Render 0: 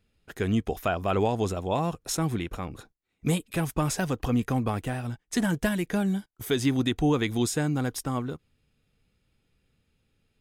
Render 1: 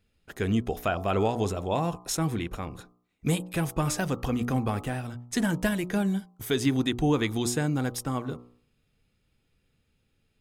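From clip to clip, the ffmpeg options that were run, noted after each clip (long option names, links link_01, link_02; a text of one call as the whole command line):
ffmpeg -i in.wav -af "bandreject=frequency=60.38:width_type=h:width=4,bandreject=frequency=120.76:width_type=h:width=4,bandreject=frequency=181.14:width_type=h:width=4,bandreject=frequency=241.52:width_type=h:width=4,bandreject=frequency=301.9:width_type=h:width=4,bandreject=frequency=362.28:width_type=h:width=4,bandreject=frequency=422.66:width_type=h:width=4,bandreject=frequency=483.04:width_type=h:width=4,bandreject=frequency=543.42:width_type=h:width=4,bandreject=frequency=603.8:width_type=h:width=4,bandreject=frequency=664.18:width_type=h:width=4,bandreject=frequency=724.56:width_type=h:width=4,bandreject=frequency=784.94:width_type=h:width=4,bandreject=frequency=845.32:width_type=h:width=4,bandreject=frequency=905.7:width_type=h:width=4,bandreject=frequency=966.08:width_type=h:width=4,bandreject=frequency=1026.46:width_type=h:width=4,bandreject=frequency=1086.84:width_type=h:width=4,bandreject=frequency=1147.22:width_type=h:width=4,bandreject=frequency=1207.6:width_type=h:width=4,bandreject=frequency=1267.98:width_type=h:width=4,bandreject=frequency=1328.36:width_type=h:width=4" out.wav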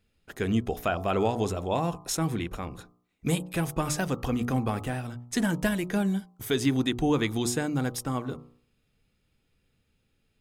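ffmpeg -i in.wav -af "bandreject=frequency=50:width_type=h:width=6,bandreject=frequency=100:width_type=h:width=6,bandreject=frequency=150:width_type=h:width=6" out.wav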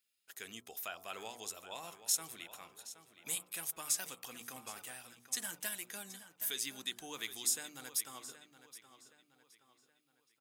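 ffmpeg -i in.wav -filter_complex "[0:a]aderivative,asplit=2[link_01][link_02];[link_02]adelay=771,lowpass=frequency=4700:poles=1,volume=-12dB,asplit=2[link_03][link_04];[link_04]adelay=771,lowpass=frequency=4700:poles=1,volume=0.43,asplit=2[link_05][link_06];[link_06]adelay=771,lowpass=frequency=4700:poles=1,volume=0.43,asplit=2[link_07][link_08];[link_08]adelay=771,lowpass=frequency=4700:poles=1,volume=0.43[link_09];[link_01][link_03][link_05][link_07][link_09]amix=inputs=5:normalize=0" out.wav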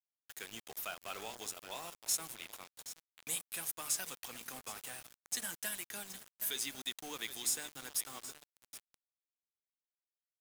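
ffmpeg -i in.wav -filter_complex "[0:a]acrossover=split=160[link_01][link_02];[link_02]asoftclip=type=tanh:threshold=-26.5dB[link_03];[link_01][link_03]amix=inputs=2:normalize=0,acrusher=bits=7:mix=0:aa=0.000001,volume=1dB" out.wav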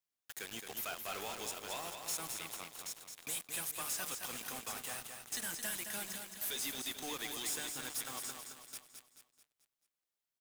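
ffmpeg -i in.wav -filter_complex "[0:a]asoftclip=type=hard:threshold=-39dB,asplit=2[link_01][link_02];[link_02]aecho=0:1:218|436|654|872|1090:0.473|0.213|0.0958|0.0431|0.0194[link_03];[link_01][link_03]amix=inputs=2:normalize=0,volume=3dB" out.wav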